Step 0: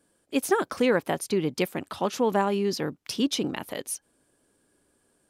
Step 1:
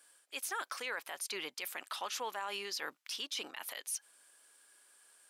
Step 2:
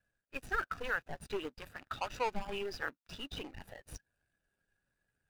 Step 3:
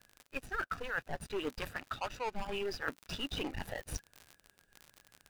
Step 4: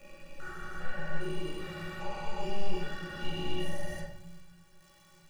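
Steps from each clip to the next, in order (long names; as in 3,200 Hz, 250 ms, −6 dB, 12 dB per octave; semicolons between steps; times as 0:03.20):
high-pass filter 1,300 Hz 12 dB per octave; reversed playback; downward compressor 5 to 1, threshold −41 dBFS, peak gain reduction 14.5 dB; reversed playback; brickwall limiter −37 dBFS, peak gain reduction 10.5 dB; level +8 dB
running median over 41 samples; parametric band 410 Hz −10.5 dB 2.4 octaves; every bin expanded away from the loudest bin 1.5 to 1; level +15 dB
surface crackle 51 per second −48 dBFS; reversed playback; downward compressor 10 to 1, threshold −44 dBFS, peak gain reduction 16 dB; reversed playback; level +10.5 dB
spectrum averaged block by block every 400 ms; stiff-string resonator 170 Hz, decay 0.23 s, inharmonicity 0.03; convolution reverb RT60 0.80 s, pre-delay 13 ms, DRR −3.5 dB; level +9.5 dB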